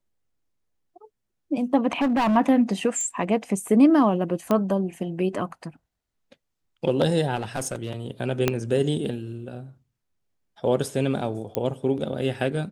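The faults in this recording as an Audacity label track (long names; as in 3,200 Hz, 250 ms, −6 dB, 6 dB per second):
1.930000	2.370000	clipping −18.5 dBFS
3.010000	3.010000	click −20 dBFS
4.510000	4.510000	click −11 dBFS
7.350000	7.910000	clipping −23 dBFS
8.480000	8.480000	click −6 dBFS
11.550000	11.550000	click −10 dBFS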